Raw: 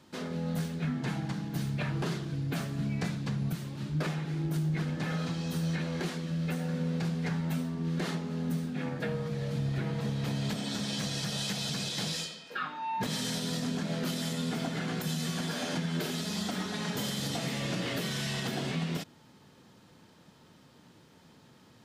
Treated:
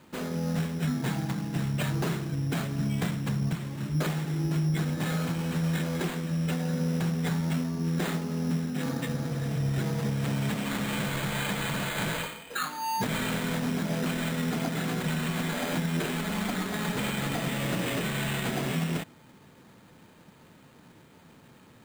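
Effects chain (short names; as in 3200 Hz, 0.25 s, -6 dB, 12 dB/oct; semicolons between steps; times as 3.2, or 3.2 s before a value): spectral repair 8.89–9.62, 200–1700 Hz both; sample-and-hold 8×; gain +3.5 dB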